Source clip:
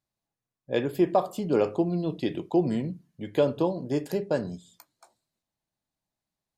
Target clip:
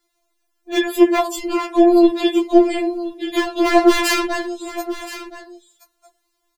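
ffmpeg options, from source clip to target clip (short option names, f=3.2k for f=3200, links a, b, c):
-filter_complex "[0:a]equalizer=f=1.2k:w=4.1:g=3.5,acrossover=split=510[a][b];[a]acompressor=threshold=-33dB:ratio=6[c];[b]volume=24.5dB,asoftclip=hard,volume=-24.5dB[d];[c][d]amix=inputs=2:normalize=0,asettb=1/sr,asplit=3[e][f][g];[e]atrim=end=3.664[h];[f]atrim=start=3.66:end=4.26,asetpts=PTS-STARTPTS,afade=t=in:d=0.004:c=qsin,afade=t=out:st=0.596:d=0.004:c=qsin,asplit=2[i][j];[j]highpass=f=720:p=1,volume=33dB,asoftclip=type=tanh:threshold=-21dB[k];[i][k]amix=inputs=2:normalize=0,lowpass=f=3.2k:p=1,volume=-6dB[l];[g]atrim=start=4.256[m];[h][l]acrossfade=d=0.004:c1=hsin:c2=qsin[n];[n][m]acrossfade=d=0.004:c1=qsin:c2=hsin,apsyclip=28.5dB,asplit=2[o][p];[p]aecho=0:1:1023:0.2[q];[o][q]amix=inputs=2:normalize=0,afftfilt=real='re*4*eq(mod(b,16),0)':imag='im*4*eq(mod(b,16),0)':win_size=2048:overlap=0.75,volume=-9.5dB"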